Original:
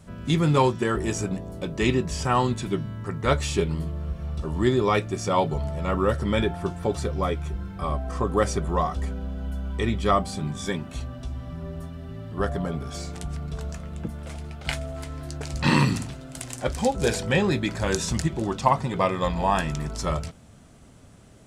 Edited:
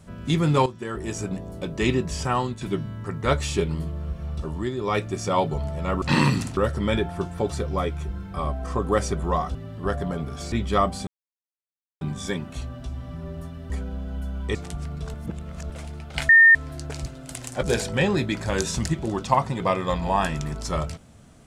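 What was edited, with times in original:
0:00.66–0:01.43: fade in, from −13.5 dB
0:02.22–0:02.61: fade out, to −8.5 dB
0:04.43–0:05.03: duck −8 dB, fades 0.26 s
0:09.00–0:09.85: swap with 0:12.09–0:13.06
0:10.40: splice in silence 0.94 s
0:13.65–0:14.21: reverse
0:14.80–0:15.06: beep over 1,820 Hz −9 dBFS
0:15.57–0:16.12: move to 0:06.02
0:16.69–0:16.97: remove

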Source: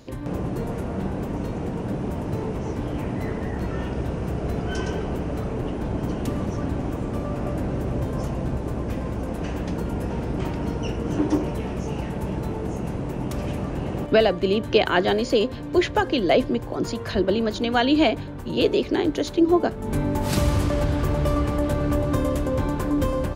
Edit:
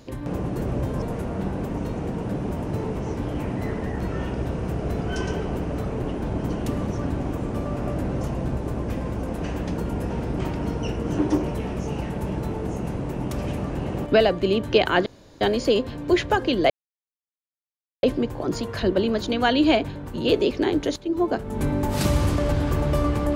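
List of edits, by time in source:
0:07.80–0:08.21: move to 0:00.61
0:15.06: splice in room tone 0.35 s
0:16.35: splice in silence 1.33 s
0:19.28–0:19.77: fade in, from −14 dB

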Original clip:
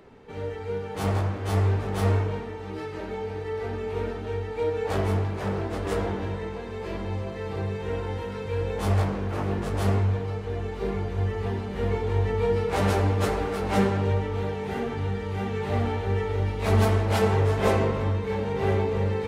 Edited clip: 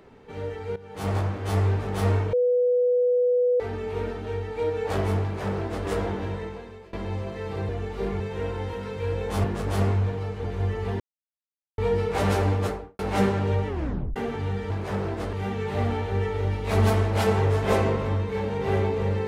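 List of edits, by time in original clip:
0:00.76–0:01.17: fade in, from −16 dB
0:02.33–0:03.60: beep over 493 Hz −18 dBFS
0:05.23–0:05.86: duplicate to 0:15.28
0:06.38–0:06.93: fade out, to −21.5 dB
0:08.93–0:09.51: remove
0:10.51–0:11.02: move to 0:07.69
0:11.58–0:12.36: silence
0:13.10–0:13.57: fade out and dull
0:14.26: tape stop 0.48 s

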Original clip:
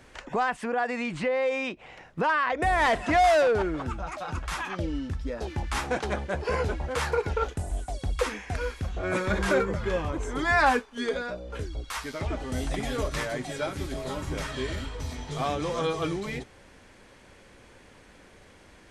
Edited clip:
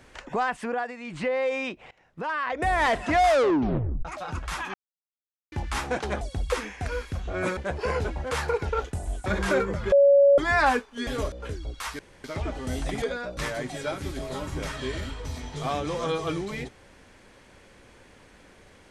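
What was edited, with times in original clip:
0:00.72–0:01.24: duck −10.5 dB, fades 0.24 s
0:01.91–0:02.69: fade in, from −20.5 dB
0:03.29: tape stop 0.76 s
0:04.74–0:05.52: silence
0:07.90–0:09.26: move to 0:06.21
0:09.92–0:10.38: beep over 562 Hz −13 dBFS
0:11.07–0:11.42: swap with 0:12.87–0:13.12
0:12.09: splice in room tone 0.25 s

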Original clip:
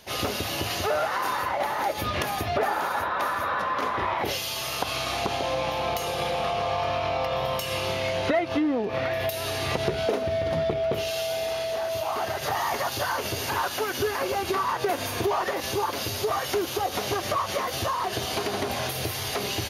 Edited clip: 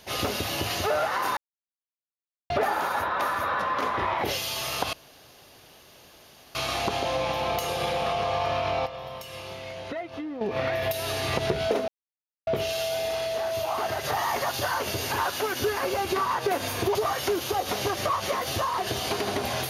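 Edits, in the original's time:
0:01.37–0:02.50: silence
0:04.93: splice in room tone 1.62 s
0:07.24–0:08.79: clip gain −10.5 dB
0:10.26–0:10.85: silence
0:15.33–0:16.21: remove

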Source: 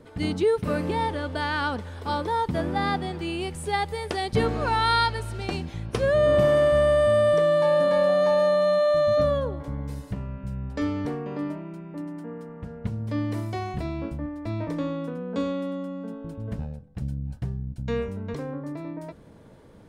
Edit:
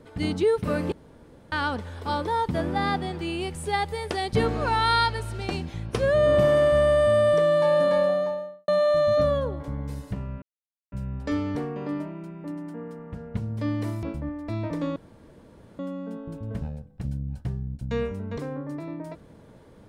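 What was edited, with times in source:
0:00.92–0:01.52: fill with room tone
0:07.87–0:08.68: fade out and dull
0:10.42: splice in silence 0.50 s
0:13.53–0:14.00: remove
0:14.93–0:15.76: fill with room tone

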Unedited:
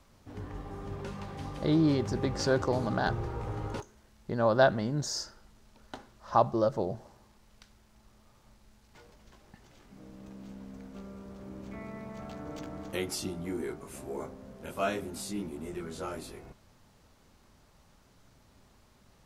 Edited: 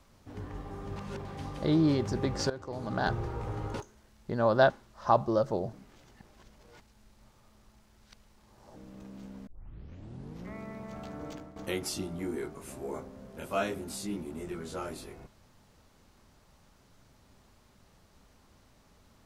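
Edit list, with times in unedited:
0:00.96–0:01.25: reverse
0:02.50–0:03.03: fade in quadratic, from −15.5 dB
0:04.70–0:05.96: remove
0:06.99–0:10.02: reverse
0:10.73: tape start 1.07 s
0:12.54–0:12.82: fade out, to −13.5 dB

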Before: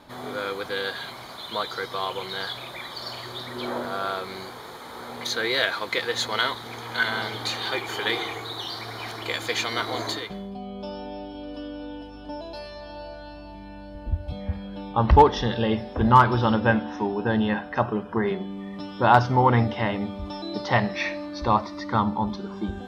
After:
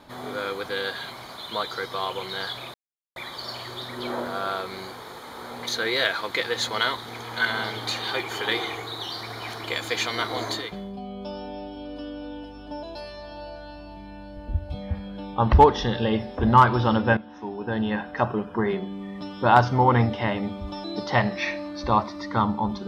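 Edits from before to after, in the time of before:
0:02.74: splice in silence 0.42 s
0:16.75–0:17.75: fade in linear, from −15 dB

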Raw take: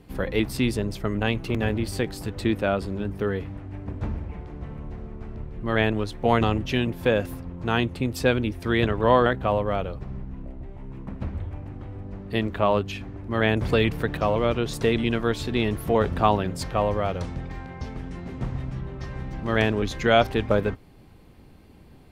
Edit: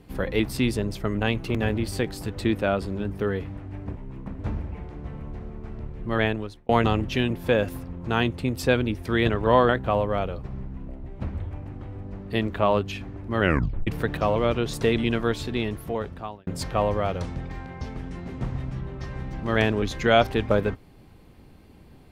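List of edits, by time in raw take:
0:05.73–0:06.26: fade out
0:10.77–0:11.20: move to 0:03.96
0:13.39: tape stop 0.48 s
0:15.23–0:16.47: fade out

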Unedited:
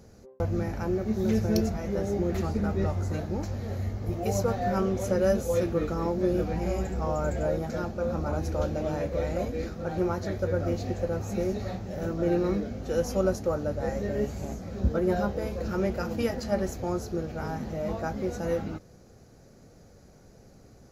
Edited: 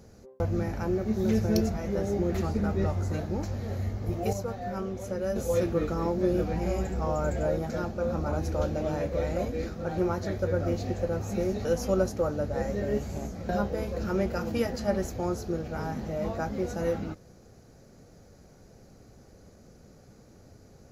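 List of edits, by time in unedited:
0:04.33–0:05.36: clip gain −7 dB
0:11.65–0:12.92: remove
0:14.76–0:15.13: remove

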